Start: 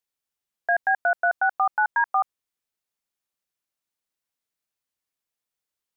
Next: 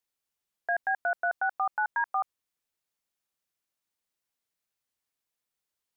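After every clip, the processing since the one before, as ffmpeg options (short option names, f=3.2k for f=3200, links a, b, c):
-af "alimiter=limit=-20.5dB:level=0:latency=1:release=11"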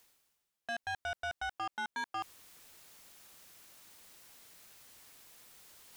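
-af "areverse,acompressor=mode=upward:threshold=-32dB:ratio=2.5,areverse,asoftclip=type=tanh:threshold=-32.5dB,volume=-1.5dB"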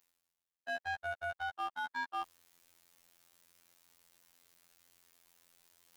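-af "aeval=exprs='0.0211*(cos(1*acos(clip(val(0)/0.0211,-1,1)))-cos(1*PI/2))+0.00422*(cos(3*acos(clip(val(0)/0.0211,-1,1)))-cos(3*PI/2))':c=same,afftfilt=real='hypot(re,im)*cos(PI*b)':imag='0':win_size=2048:overlap=0.75,volume=1dB"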